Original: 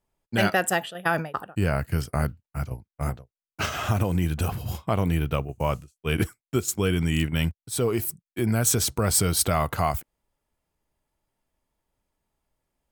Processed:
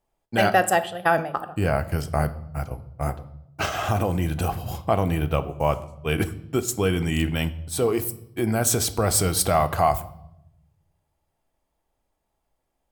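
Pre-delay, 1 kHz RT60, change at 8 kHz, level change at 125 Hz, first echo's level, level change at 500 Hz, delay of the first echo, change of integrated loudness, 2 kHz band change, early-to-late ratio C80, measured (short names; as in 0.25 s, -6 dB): 3 ms, 0.70 s, +0.5 dB, 0.0 dB, none, +4.5 dB, none, +2.0 dB, +1.5 dB, 19.0 dB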